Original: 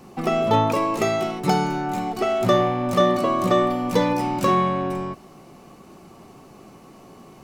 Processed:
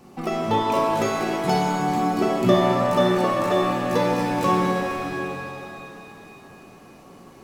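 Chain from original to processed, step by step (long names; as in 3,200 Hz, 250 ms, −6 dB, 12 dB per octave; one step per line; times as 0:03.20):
0:01.79–0:02.55: parametric band 220 Hz +7.5 dB 1.5 octaves
reverb with rising layers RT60 2.7 s, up +7 semitones, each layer −8 dB, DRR −0.5 dB
level −4 dB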